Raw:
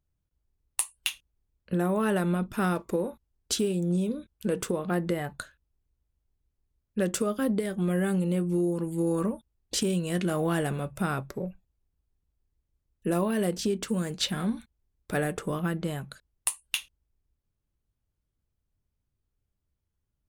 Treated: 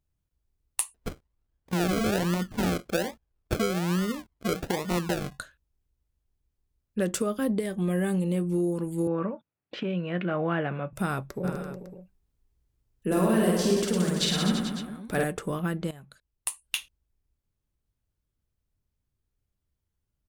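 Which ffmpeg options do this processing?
ffmpeg -i in.wav -filter_complex "[0:a]asettb=1/sr,asplit=3[link_01][link_02][link_03];[link_01]atrim=end=0.944[link_04];[link_02]atrim=start=0.94:end=5.4,asetpts=PTS-STARTPTS,afade=type=in:duration=0.004:curve=qsin,afade=type=out:start_time=4.456:duration=0.004:curve=qsin,acrusher=samples=38:mix=1:aa=0.000001:lfo=1:lforange=22.8:lforate=1.2[link_05];[link_03]atrim=start=5.396[link_06];[link_04][link_05]acrossfade=duration=0.004:curve1=hsin:curve2=qsin[link_07];[link_07][link_06]acrossfade=duration=0.004:curve1=qsin:curve2=hsin,asettb=1/sr,asplit=3[link_08][link_09][link_10];[link_08]atrim=end=7.394[link_11];[link_09]atrim=start=7.39:end=8.44,asetpts=PTS-STARTPTS,afade=type=in:duration=0.004:curve=qsin,afade=type=out:start_time=1.046:duration=0.004:curve=qsin,bandreject=frequency=1400:width=8.3[link_12];[link_10]atrim=start=8.436[link_13];[link_11][link_12]acrossfade=duration=0.004:curve1=hsin:curve2=qsin[link_14];[link_14][link_13]acrossfade=duration=0.004:curve1=qsin:curve2=hsin,asettb=1/sr,asplit=3[link_15][link_16][link_17];[link_15]atrim=end=9.074[link_18];[link_16]atrim=start=9.07:end=10.93,asetpts=PTS-STARTPTS,afade=type=in:duration=0.004:curve=qsin,afade=type=out:start_time=1.856:duration=0.004:curve=qsin,highpass=frequency=130:width=0.5412,highpass=frequency=130:width=1.3066,equalizer=frequency=220:width_type=q:width=4:gain=-5,equalizer=frequency=400:width_type=q:width=4:gain=-5,equalizer=frequency=570:width_type=q:width=4:gain=3,equalizer=frequency=1400:width_type=q:width=4:gain=4,equalizer=frequency=2400:width_type=q:width=4:gain=3,lowpass=frequency=2800:width=0.5412,lowpass=frequency=2800:width=1.3066[link_19];[link_17]atrim=start=10.926[link_20];[link_18][link_19]acrossfade=duration=0.004:curve1=hsin:curve2=qsin[link_21];[link_21][link_20]acrossfade=duration=0.004:curve1=qsin:curve2=hsin,asplit=3[link_22][link_23][link_24];[link_22]afade=type=out:start_time=11.43:duration=0.02[link_25];[link_23]aecho=1:1:50|107.5|173.6|249.7|337.1|437.7|553.3:0.794|0.631|0.501|0.398|0.316|0.251|0.2,afade=type=in:start_time=11.43:duration=0.02,afade=type=out:start_time=15.23:duration=0.02[link_26];[link_24]afade=type=in:start_time=15.23:duration=0.02[link_27];[link_25][link_26][link_27]amix=inputs=3:normalize=0,asplit=2[link_28][link_29];[link_28]atrim=end=15.91,asetpts=PTS-STARTPTS,afade=type=out:start_time=15.906:duration=0.004:curve=hsin:silence=0.177828[link_30];[link_29]atrim=start=15.91,asetpts=PTS-STARTPTS,afade=type=in:duration=0.88:silence=0.177828[link_31];[link_30][link_31]concat=n=2:v=0:a=1" out.wav

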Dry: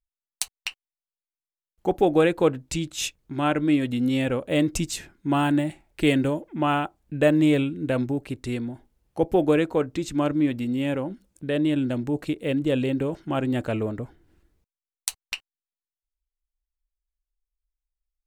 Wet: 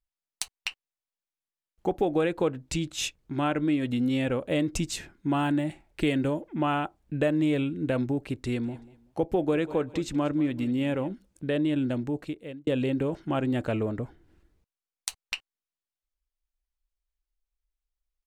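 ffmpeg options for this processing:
ffmpeg -i in.wav -filter_complex "[0:a]asplit=3[link_01][link_02][link_03];[link_01]afade=type=out:start_time=8.63:duration=0.02[link_04];[link_02]aecho=1:1:190|380:0.112|0.0303,afade=type=in:start_time=8.63:duration=0.02,afade=type=out:start_time=11.07:duration=0.02[link_05];[link_03]afade=type=in:start_time=11.07:duration=0.02[link_06];[link_04][link_05][link_06]amix=inputs=3:normalize=0,asplit=2[link_07][link_08];[link_07]atrim=end=12.67,asetpts=PTS-STARTPTS,afade=type=out:start_time=11.83:duration=0.84[link_09];[link_08]atrim=start=12.67,asetpts=PTS-STARTPTS,afade=type=in:duration=0.004:curve=hsin[link_10];[link_09][link_10]concat=n=2:v=0:a=1,acompressor=threshold=-24dB:ratio=2.5,highshelf=frequency=8600:gain=-7.5" out.wav

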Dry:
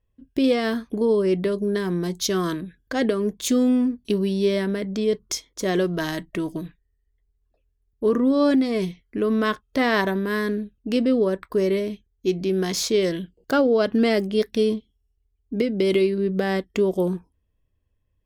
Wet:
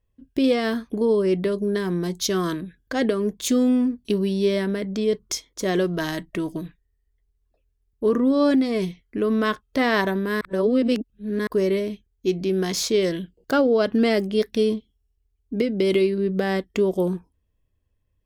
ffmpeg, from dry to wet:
ffmpeg -i in.wav -filter_complex "[0:a]asplit=3[link_01][link_02][link_03];[link_01]atrim=end=10.412[link_04];[link_02]atrim=start=10.408:end=11.472,asetpts=PTS-STARTPTS,areverse[link_05];[link_03]atrim=start=11.468[link_06];[link_04][link_05]acrossfade=duration=0.004:curve1=hsin:curve2=hsin[link_07];[link_07][link_06]acrossfade=duration=0.004:curve1=hsin:curve2=hsin" out.wav

